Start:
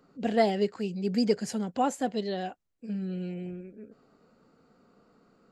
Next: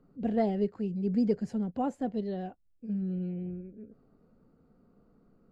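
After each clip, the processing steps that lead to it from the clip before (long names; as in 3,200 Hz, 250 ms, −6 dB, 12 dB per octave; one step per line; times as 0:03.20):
spectral tilt −4 dB per octave
level −8.5 dB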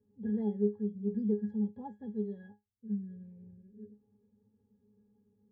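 resonances in every octave G#, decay 0.19 s
level +3 dB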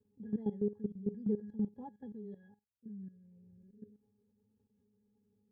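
output level in coarse steps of 15 dB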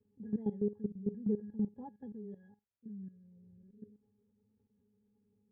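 high-frequency loss of the air 400 metres
level +1 dB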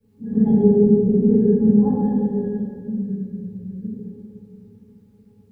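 convolution reverb RT60 2.4 s, pre-delay 4 ms, DRR −14.5 dB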